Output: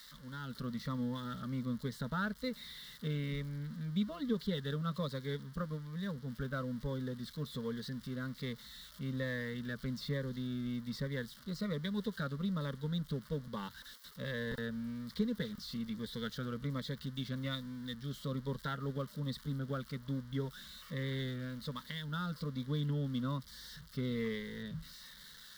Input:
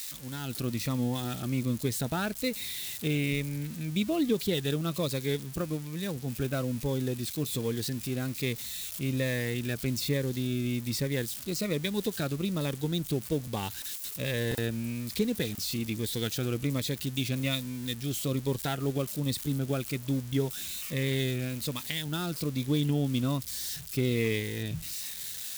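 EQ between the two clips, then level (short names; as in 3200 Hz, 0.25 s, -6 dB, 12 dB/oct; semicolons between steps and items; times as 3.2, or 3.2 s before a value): air absorption 380 m; passive tone stack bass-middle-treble 5-5-5; fixed phaser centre 500 Hz, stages 8; +14.0 dB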